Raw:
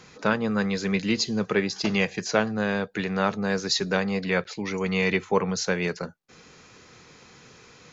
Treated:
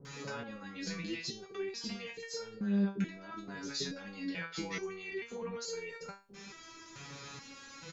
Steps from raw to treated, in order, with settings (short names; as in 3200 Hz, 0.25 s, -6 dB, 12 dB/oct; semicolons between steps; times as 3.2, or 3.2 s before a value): 2.54–3.55 bell 230 Hz +9 dB 1.4 oct; compressor 4:1, threshold -33 dBFS, peak gain reduction 15 dB; limiter -30.5 dBFS, peak gain reduction 11 dB; bands offset in time lows, highs 50 ms, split 570 Hz; stepped resonator 2.3 Hz 140–460 Hz; gain +14.5 dB